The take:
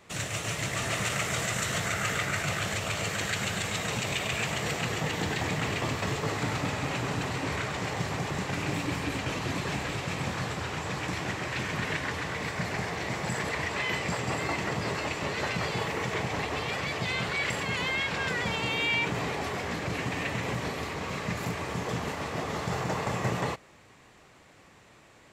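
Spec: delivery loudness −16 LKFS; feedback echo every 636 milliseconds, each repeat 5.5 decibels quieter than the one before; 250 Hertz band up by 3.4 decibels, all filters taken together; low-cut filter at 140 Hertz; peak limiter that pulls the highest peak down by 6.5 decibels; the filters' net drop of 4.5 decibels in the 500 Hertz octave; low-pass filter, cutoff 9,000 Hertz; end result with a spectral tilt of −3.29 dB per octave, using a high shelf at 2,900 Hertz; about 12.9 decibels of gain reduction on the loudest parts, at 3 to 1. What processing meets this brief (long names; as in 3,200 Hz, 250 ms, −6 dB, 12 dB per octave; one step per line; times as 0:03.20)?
high-pass filter 140 Hz
low-pass filter 9,000 Hz
parametric band 250 Hz +8 dB
parametric band 500 Hz −8.5 dB
high-shelf EQ 2,900 Hz +4.5 dB
downward compressor 3 to 1, threshold −43 dBFS
brickwall limiter −33 dBFS
repeating echo 636 ms, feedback 53%, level −5.5 dB
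level +25 dB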